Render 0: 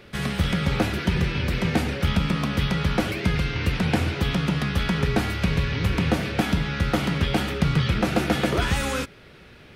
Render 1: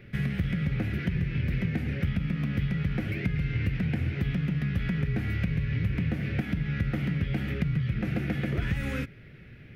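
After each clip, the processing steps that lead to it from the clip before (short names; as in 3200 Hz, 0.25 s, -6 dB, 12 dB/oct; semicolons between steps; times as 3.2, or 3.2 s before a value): graphic EQ 125/250/1000/2000/4000/8000 Hz +11/+4/-11/+10/-6/-11 dB; compressor, threshold -19 dBFS, peak gain reduction 11.5 dB; low shelf 64 Hz +10 dB; gain -7.5 dB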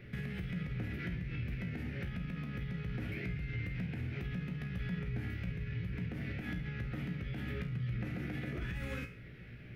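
limiter -24.5 dBFS, peak gain reduction 8 dB; compressor, threshold -33 dBFS, peak gain reduction 5.5 dB; resonator 60 Hz, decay 0.4 s, harmonics all, mix 80%; gain +5 dB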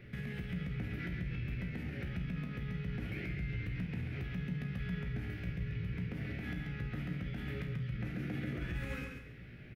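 feedback echo 0.136 s, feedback 26%, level -5.5 dB; gain -1.5 dB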